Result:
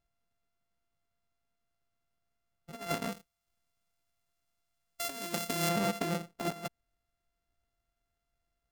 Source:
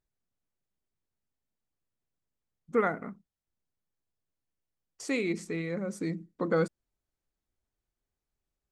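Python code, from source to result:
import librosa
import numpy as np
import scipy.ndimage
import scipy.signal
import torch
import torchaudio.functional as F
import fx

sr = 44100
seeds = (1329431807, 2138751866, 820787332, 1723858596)

y = np.r_[np.sort(x[:len(x) // 64 * 64].reshape(-1, 64), axis=1).ravel(), x[len(x) // 64 * 64:]]
y = fx.high_shelf(y, sr, hz=3200.0, db=10.0, at=(3.12, 5.69))
y = fx.over_compress(y, sr, threshold_db=-33.0, ratio=-0.5)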